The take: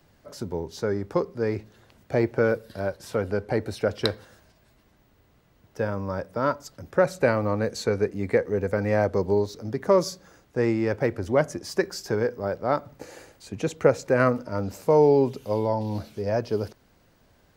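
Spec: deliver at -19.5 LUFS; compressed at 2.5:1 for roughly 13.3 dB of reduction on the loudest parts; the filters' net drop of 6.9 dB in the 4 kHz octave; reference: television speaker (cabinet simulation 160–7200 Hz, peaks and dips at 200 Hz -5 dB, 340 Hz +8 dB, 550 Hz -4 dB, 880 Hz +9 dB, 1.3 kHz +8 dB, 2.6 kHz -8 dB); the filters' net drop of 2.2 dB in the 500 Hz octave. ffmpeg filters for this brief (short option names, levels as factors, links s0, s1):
-af "equalizer=f=500:t=o:g=-3.5,equalizer=f=4000:t=o:g=-7.5,acompressor=threshold=0.0158:ratio=2.5,highpass=f=160:w=0.5412,highpass=f=160:w=1.3066,equalizer=f=200:t=q:w=4:g=-5,equalizer=f=340:t=q:w=4:g=8,equalizer=f=550:t=q:w=4:g=-4,equalizer=f=880:t=q:w=4:g=9,equalizer=f=1300:t=q:w=4:g=8,equalizer=f=2600:t=q:w=4:g=-8,lowpass=f=7200:w=0.5412,lowpass=f=7200:w=1.3066,volume=6.68"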